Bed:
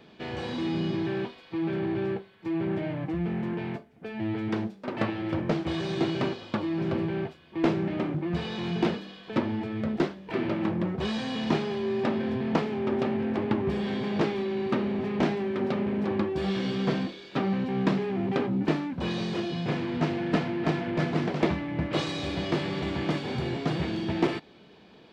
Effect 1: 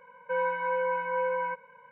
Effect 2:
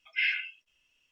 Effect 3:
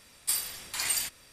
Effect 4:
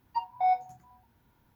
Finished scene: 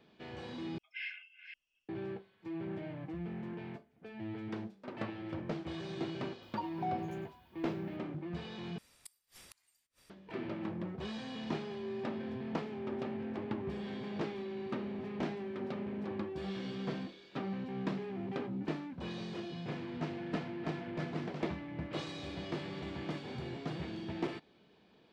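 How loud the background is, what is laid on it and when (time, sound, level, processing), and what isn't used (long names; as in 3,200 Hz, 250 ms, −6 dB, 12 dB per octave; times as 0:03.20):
bed −11.5 dB
0:00.78: overwrite with 2 −15 dB + delay that plays each chunk backwards 253 ms, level −7 dB
0:06.42: mix in 4 −2.5 dB + downward compressor, threshold −32 dBFS
0:08.78: overwrite with 3 −10 dB + gate with flip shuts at −26 dBFS, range −36 dB
not used: 1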